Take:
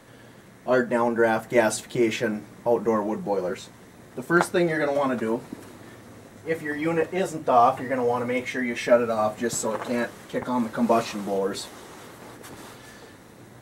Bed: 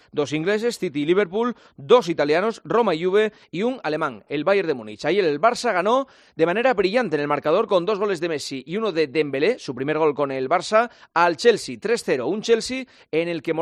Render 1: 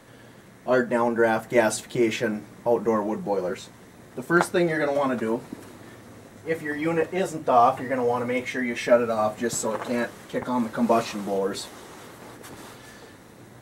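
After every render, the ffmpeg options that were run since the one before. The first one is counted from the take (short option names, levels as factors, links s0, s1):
-af anull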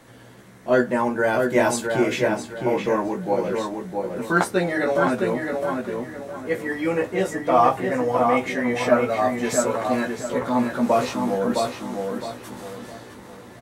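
-filter_complex "[0:a]asplit=2[s0][s1];[s1]adelay=16,volume=0.596[s2];[s0][s2]amix=inputs=2:normalize=0,asplit=2[s3][s4];[s4]adelay=662,lowpass=f=3000:p=1,volume=0.631,asplit=2[s5][s6];[s6]adelay=662,lowpass=f=3000:p=1,volume=0.35,asplit=2[s7][s8];[s8]adelay=662,lowpass=f=3000:p=1,volume=0.35,asplit=2[s9][s10];[s10]adelay=662,lowpass=f=3000:p=1,volume=0.35[s11];[s3][s5][s7][s9][s11]amix=inputs=5:normalize=0"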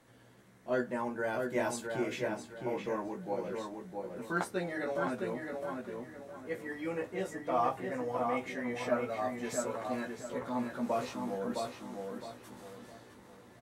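-af "volume=0.211"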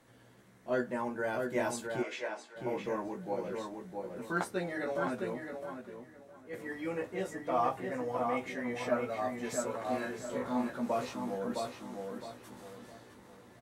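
-filter_complex "[0:a]asplit=3[s0][s1][s2];[s0]afade=t=out:st=2.02:d=0.02[s3];[s1]highpass=570,lowpass=7000,afade=t=in:st=2.02:d=0.02,afade=t=out:st=2.55:d=0.02[s4];[s2]afade=t=in:st=2.55:d=0.02[s5];[s3][s4][s5]amix=inputs=3:normalize=0,asettb=1/sr,asplit=3[s6][s7][s8];[s6]atrim=end=9.834[s9];[s7]atrim=start=9.83:end=10.7,asetpts=PTS-STARTPTS,afade=t=in:d=0.004:c=qsin,afade=t=out:st=0.866:d=0.004:c=qsin,asplit=2[s10][s11];[s11]adelay=36,volume=0.708[s12];[s10][s12]amix=inputs=2:normalize=0,atrim=end_sample=38367[s13];[s8]atrim=start=10.696[s14];[s9][s13]acrossfade=d=0.004:c1=hsin:c2=qsin[s15];[s15][s14]acrossfade=d=0.004:c1=qsin:c2=hsin,asplit=2[s16][s17];[s16]atrim=end=6.53,asetpts=PTS-STARTPTS,afade=t=out:st=5.22:d=1.31:c=qua:silence=0.421697[s18];[s17]atrim=start=6.53,asetpts=PTS-STARTPTS,afade=t=in:d=0.004:c=hsin:silence=0.421697[s19];[s18][s19]concat=n=2:v=0:a=1"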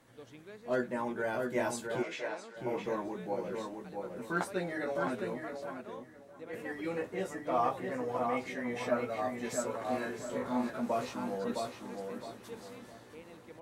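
-filter_complex "[1:a]volume=0.0335[s0];[0:a][s0]amix=inputs=2:normalize=0"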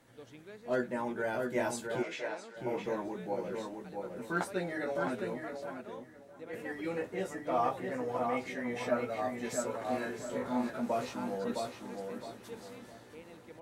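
-af "bandreject=f=1100:w=14"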